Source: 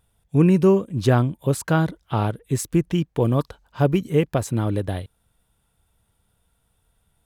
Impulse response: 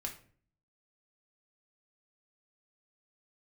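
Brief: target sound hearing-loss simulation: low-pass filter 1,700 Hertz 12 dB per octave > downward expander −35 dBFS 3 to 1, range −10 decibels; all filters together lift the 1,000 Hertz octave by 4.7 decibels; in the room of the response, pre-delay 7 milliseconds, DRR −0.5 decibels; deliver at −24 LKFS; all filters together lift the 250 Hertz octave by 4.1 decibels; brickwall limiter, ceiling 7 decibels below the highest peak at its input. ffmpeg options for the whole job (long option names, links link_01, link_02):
-filter_complex "[0:a]equalizer=frequency=250:width_type=o:gain=6,equalizer=frequency=1000:width_type=o:gain=6.5,alimiter=limit=-9dB:level=0:latency=1,asplit=2[link_01][link_02];[1:a]atrim=start_sample=2205,adelay=7[link_03];[link_02][link_03]afir=irnorm=-1:irlink=0,volume=1dB[link_04];[link_01][link_04]amix=inputs=2:normalize=0,lowpass=1700,agate=range=-10dB:threshold=-35dB:ratio=3,volume=-6.5dB"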